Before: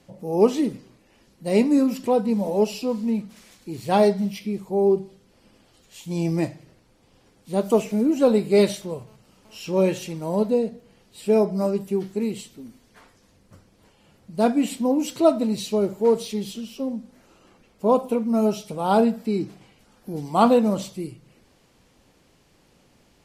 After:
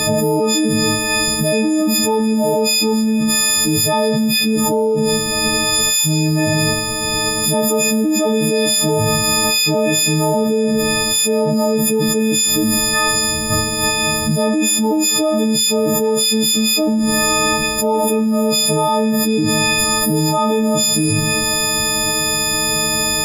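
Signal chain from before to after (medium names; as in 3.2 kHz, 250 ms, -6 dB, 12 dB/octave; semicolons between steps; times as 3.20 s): partials quantised in pitch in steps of 6 st; level flattener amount 100%; trim -5.5 dB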